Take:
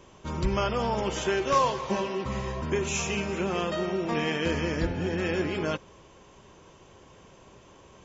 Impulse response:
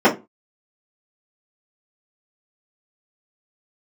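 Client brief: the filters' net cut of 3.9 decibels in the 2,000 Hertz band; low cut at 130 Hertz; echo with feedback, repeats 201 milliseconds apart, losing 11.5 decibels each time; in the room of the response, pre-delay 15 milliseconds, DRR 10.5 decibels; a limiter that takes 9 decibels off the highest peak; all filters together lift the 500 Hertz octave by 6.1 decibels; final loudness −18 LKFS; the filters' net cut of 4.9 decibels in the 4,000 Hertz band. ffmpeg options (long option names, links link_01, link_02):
-filter_complex "[0:a]highpass=130,equalizer=frequency=500:width_type=o:gain=8,equalizer=frequency=2000:width_type=o:gain=-4,equalizer=frequency=4000:width_type=o:gain=-5.5,alimiter=limit=-17.5dB:level=0:latency=1,aecho=1:1:201|402|603:0.266|0.0718|0.0194,asplit=2[link_01][link_02];[1:a]atrim=start_sample=2205,adelay=15[link_03];[link_02][link_03]afir=irnorm=-1:irlink=0,volume=-35dB[link_04];[link_01][link_04]amix=inputs=2:normalize=0,volume=7.5dB"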